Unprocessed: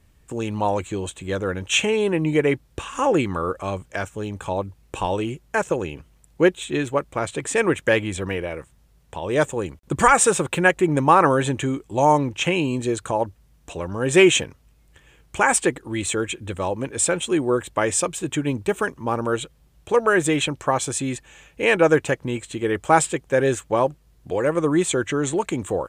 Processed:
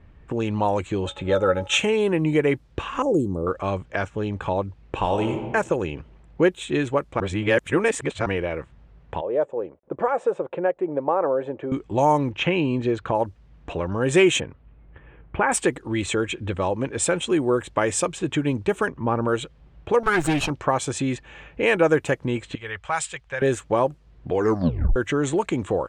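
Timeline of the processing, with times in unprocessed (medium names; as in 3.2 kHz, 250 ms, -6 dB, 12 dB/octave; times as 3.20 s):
1.06–1.78 s: small resonant body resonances 560/840/1300/3600 Hz, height 18 dB, ringing for 90 ms
3.02–3.47 s: Chebyshev band-stop 440–8100 Hz
4.95–5.44 s: reverb throw, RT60 1.2 s, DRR 5 dB
7.20–8.26 s: reverse
9.21–11.72 s: band-pass filter 550 Hz, Q 2.4
12.30–13.15 s: low-pass 3.5 kHz
14.40–15.52 s: distance through air 420 m
18.88–19.28 s: tone controls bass +3 dB, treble -14 dB
20.03–20.50 s: comb filter that takes the minimum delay 0.73 ms
22.55–23.42 s: amplifier tone stack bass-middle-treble 10-0-10
24.34 s: tape stop 0.62 s
whole clip: level-controlled noise filter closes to 2.2 kHz, open at -16.5 dBFS; treble shelf 4.3 kHz -5.5 dB; compression 1.5:1, threshold -39 dBFS; trim +7.5 dB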